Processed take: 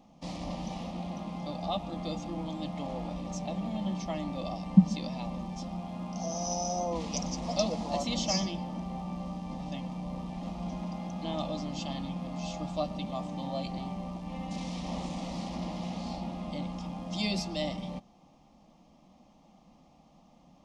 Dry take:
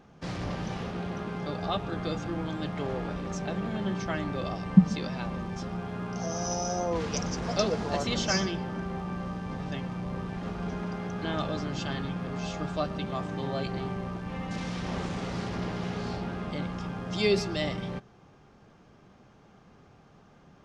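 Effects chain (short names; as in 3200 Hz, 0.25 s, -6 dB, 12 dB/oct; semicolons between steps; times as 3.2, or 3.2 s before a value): fixed phaser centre 410 Hz, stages 6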